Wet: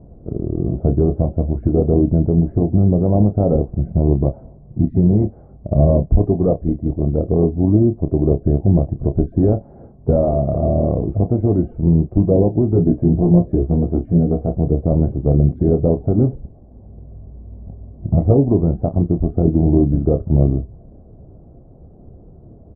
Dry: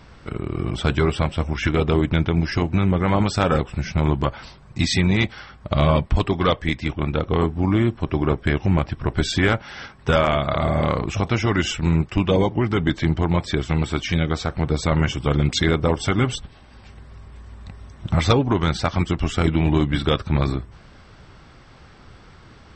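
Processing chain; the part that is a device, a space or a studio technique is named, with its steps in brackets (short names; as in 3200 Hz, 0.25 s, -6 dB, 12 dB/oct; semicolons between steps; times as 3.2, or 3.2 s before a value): 12.67–14.53 doubler 17 ms -3.5 dB; under water (LPF 510 Hz 24 dB/oct; bell 680 Hz +10 dB 0.32 oct); doubler 29 ms -9.5 dB; gain +5 dB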